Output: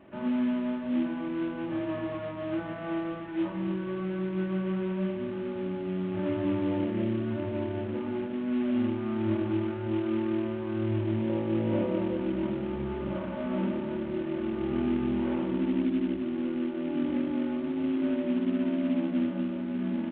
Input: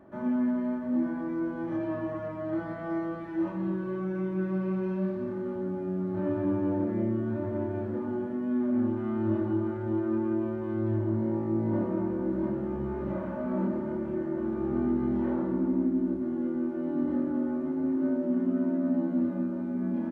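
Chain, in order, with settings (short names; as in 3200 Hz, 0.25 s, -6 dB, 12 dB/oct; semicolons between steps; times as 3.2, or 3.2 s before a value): CVSD 16 kbps; 11.29–12.17 bell 520 Hz +9.5 dB 0.32 oct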